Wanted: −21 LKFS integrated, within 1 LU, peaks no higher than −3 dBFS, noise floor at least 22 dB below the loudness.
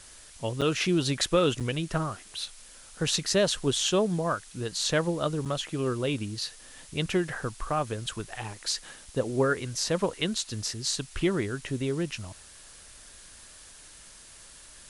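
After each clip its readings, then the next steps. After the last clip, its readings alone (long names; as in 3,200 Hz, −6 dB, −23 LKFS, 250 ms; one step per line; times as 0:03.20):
number of dropouts 3; longest dropout 7.0 ms; background noise floor −50 dBFS; target noise floor −51 dBFS; integrated loudness −29.0 LKFS; sample peak −11.0 dBFS; target loudness −21.0 LKFS
→ repair the gap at 0:00.61/0:01.60/0:05.45, 7 ms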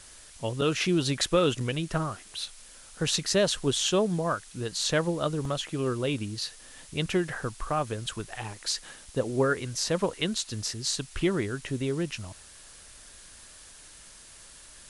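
number of dropouts 0; background noise floor −50 dBFS; target noise floor −51 dBFS
→ broadband denoise 6 dB, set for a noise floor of −50 dBFS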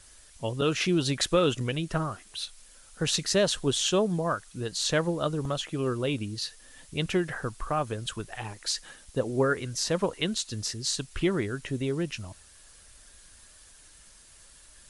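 background noise floor −54 dBFS; integrated loudness −29.0 LKFS; sample peak −11.5 dBFS; target loudness −21.0 LKFS
→ level +8 dB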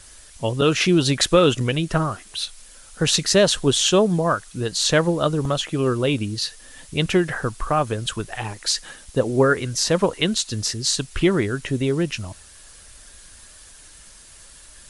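integrated loudness −21.0 LKFS; sample peak −3.5 dBFS; background noise floor −46 dBFS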